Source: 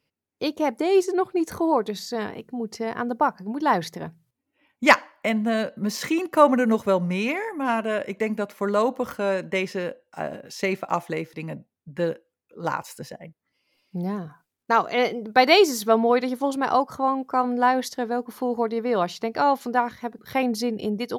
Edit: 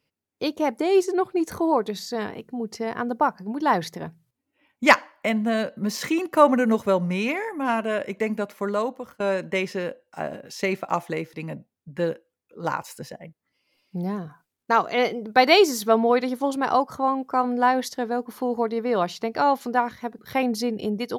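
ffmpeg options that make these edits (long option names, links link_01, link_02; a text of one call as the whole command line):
ffmpeg -i in.wav -filter_complex "[0:a]asplit=2[link_01][link_02];[link_01]atrim=end=9.2,asetpts=PTS-STARTPTS,afade=type=out:start_time=8.28:duration=0.92:curve=qsin:silence=0.0749894[link_03];[link_02]atrim=start=9.2,asetpts=PTS-STARTPTS,afade=type=in:duration=0.004:curve=hsin:silence=0.0749894[link_04];[link_03][link_04]concat=n=2:v=0:a=1" out.wav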